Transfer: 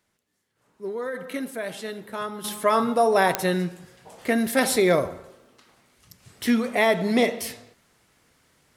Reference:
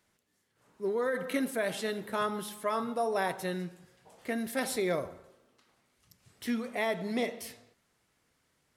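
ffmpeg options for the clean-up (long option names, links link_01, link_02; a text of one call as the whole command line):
ffmpeg -i in.wav -af "adeclick=threshold=4,asetnsamples=nb_out_samples=441:pad=0,asendcmd='2.44 volume volume -11dB',volume=0dB" out.wav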